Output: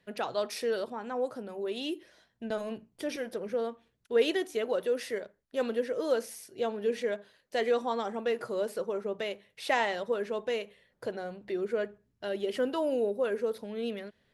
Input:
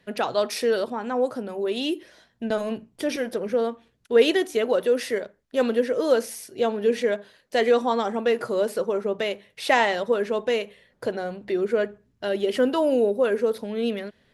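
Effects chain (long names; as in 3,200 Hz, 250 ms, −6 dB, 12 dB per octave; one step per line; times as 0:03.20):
parametric band 250 Hz −3 dB 0.25 octaves
level −8 dB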